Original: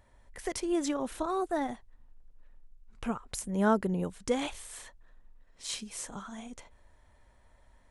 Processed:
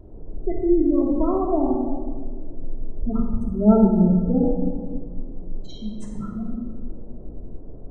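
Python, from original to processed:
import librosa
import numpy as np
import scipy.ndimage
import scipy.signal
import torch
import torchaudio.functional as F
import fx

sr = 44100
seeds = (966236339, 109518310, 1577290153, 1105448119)

y = fx.tilt_eq(x, sr, slope=-3.0)
y = fx.spec_gate(y, sr, threshold_db=-15, keep='strong')
y = fx.dmg_noise_band(y, sr, seeds[0], low_hz=44.0, high_hz=500.0, level_db=-52.0)
y = fx.room_shoebox(y, sr, seeds[1], volume_m3=1800.0, walls='mixed', distance_m=3.0)
y = y * 10.0 ** (1.0 / 20.0)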